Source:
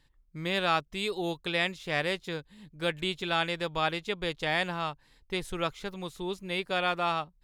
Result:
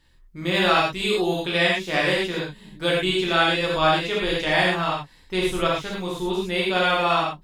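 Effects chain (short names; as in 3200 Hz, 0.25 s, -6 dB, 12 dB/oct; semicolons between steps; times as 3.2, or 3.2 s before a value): non-linear reverb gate 0.14 s flat, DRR -5.5 dB; gain +2.5 dB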